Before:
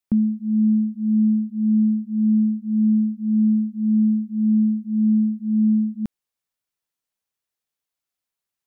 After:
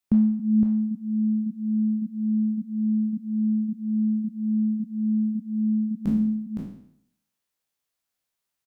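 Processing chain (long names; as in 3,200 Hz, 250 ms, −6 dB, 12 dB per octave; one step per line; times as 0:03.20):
peak hold with a decay on every bin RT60 0.68 s
single-tap delay 514 ms −5.5 dB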